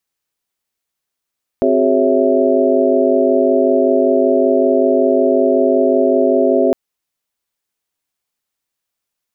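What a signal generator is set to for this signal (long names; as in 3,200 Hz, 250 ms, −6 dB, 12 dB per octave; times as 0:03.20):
held notes C4/F#4/G#4/C#5/E5 sine, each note −16.5 dBFS 5.11 s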